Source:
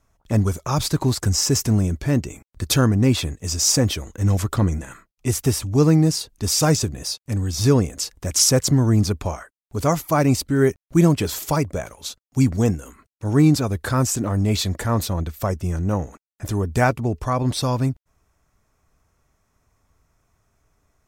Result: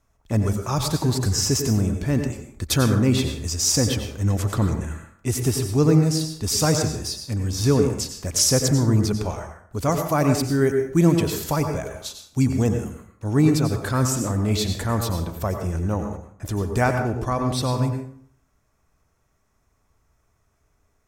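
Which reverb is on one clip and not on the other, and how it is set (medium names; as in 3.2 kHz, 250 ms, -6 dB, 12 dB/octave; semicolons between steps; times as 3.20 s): plate-style reverb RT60 0.61 s, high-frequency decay 0.65×, pre-delay 80 ms, DRR 5 dB; trim -2.5 dB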